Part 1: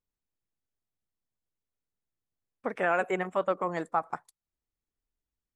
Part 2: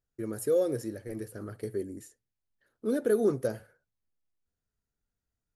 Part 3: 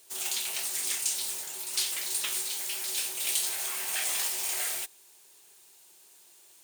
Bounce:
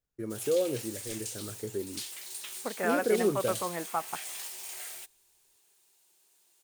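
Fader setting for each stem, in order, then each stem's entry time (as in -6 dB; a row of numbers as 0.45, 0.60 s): -3.5, -1.5, -10.0 dB; 0.00, 0.00, 0.20 s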